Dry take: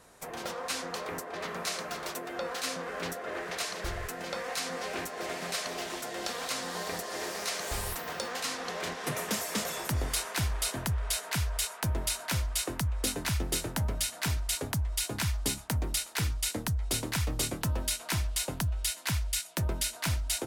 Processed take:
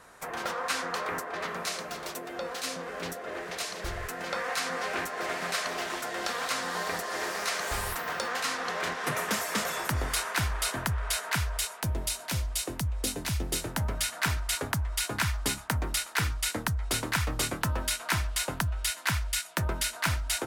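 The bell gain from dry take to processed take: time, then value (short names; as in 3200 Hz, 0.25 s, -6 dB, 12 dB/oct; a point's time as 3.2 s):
bell 1400 Hz 1.6 oct
1.19 s +8.5 dB
1.88 s -1 dB
3.76 s -1 dB
4.38 s +7.5 dB
11.35 s +7.5 dB
11.95 s -3 dB
13.36 s -3 dB
14.08 s +9 dB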